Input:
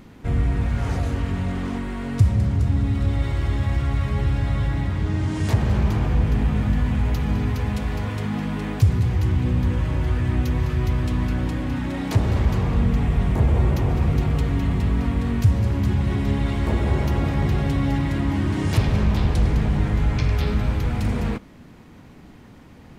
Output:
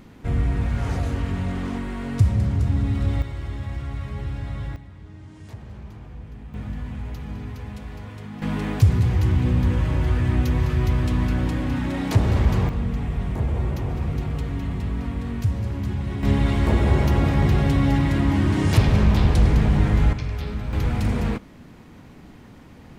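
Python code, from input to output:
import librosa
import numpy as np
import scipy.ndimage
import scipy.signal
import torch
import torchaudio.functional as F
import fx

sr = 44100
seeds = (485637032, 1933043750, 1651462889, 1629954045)

y = fx.gain(x, sr, db=fx.steps((0.0, -1.0), (3.22, -8.0), (4.76, -19.0), (6.54, -10.5), (8.42, 1.0), (12.69, -5.5), (16.23, 2.5), (20.13, -7.0), (20.73, 0.5)))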